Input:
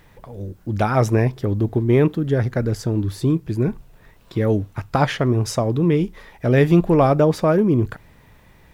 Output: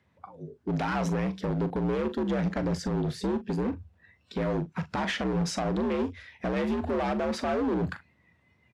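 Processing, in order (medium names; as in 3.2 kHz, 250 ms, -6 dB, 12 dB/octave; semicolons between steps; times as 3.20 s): spectral noise reduction 16 dB; harmonic-percussive split harmonic -3 dB; peak limiter -17 dBFS, peak gain reduction 11.5 dB; frequency shift +61 Hz; hard clipper -25 dBFS, distortion -8 dB; distance through air 65 m; doubling 41 ms -12 dB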